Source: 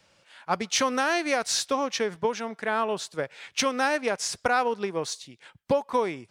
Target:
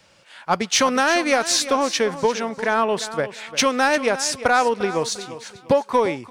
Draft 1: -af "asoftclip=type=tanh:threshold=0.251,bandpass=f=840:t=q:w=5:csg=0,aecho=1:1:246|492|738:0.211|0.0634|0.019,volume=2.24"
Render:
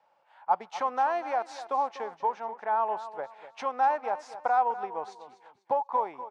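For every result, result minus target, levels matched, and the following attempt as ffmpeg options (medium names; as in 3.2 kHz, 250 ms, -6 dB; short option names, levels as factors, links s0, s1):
echo 103 ms early; 1 kHz band +5.5 dB
-af "asoftclip=type=tanh:threshold=0.251,bandpass=f=840:t=q:w=5:csg=0,aecho=1:1:349|698|1047:0.211|0.0634|0.019,volume=2.24"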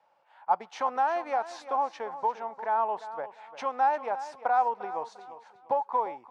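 1 kHz band +5.5 dB
-af "asoftclip=type=tanh:threshold=0.251,aecho=1:1:349|698|1047:0.211|0.0634|0.019,volume=2.24"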